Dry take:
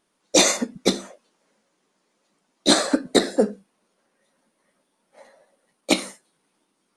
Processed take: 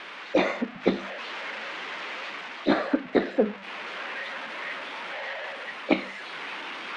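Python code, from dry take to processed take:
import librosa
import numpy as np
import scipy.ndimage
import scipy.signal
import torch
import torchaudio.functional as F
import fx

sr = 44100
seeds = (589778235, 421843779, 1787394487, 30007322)

p1 = x + 0.5 * 10.0 ** (-12.0 / 20.0) * np.diff(np.sign(x), prepend=np.sign(x[:1]))
p2 = scipy.signal.sosfilt(scipy.signal.butter(4, 2500.0, 'lowpass', fs=sr, output='sos'), p1)
p3 = fx.hum_notches(p2, sr, base_hz=50, count=4)
p4 = fx.rider(p3, sr, range_db=5, speed_s=0.5)
p5 = p3 + F.gain(torch.from_numpy(p4), 1.5).numpy()
y = F.gain(torch.from_numpy(p5), -8.5).numpy()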